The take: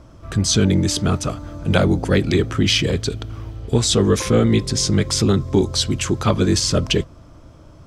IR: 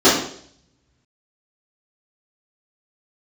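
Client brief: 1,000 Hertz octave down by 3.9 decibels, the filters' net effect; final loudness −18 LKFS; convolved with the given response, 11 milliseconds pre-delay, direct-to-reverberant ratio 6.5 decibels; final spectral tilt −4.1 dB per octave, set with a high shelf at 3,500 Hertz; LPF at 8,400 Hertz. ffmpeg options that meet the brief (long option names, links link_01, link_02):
-filter_complex "[0:a]lowpass=8400,equalizer=frequency=1000:width_type=o:gain=-6.5,highshelf=frequency=3500:gain=7.5,asplit=2[link_01][link_02];[1:a]atrim=start_sample=2205,adelay=11[link_03];[link_02][link_03]afir=irnorm=-1:irlink=0,volume=-32.5dB[link_04];[link_01][link_04]amix=inputs=2:normalize=0,volume=-2dB"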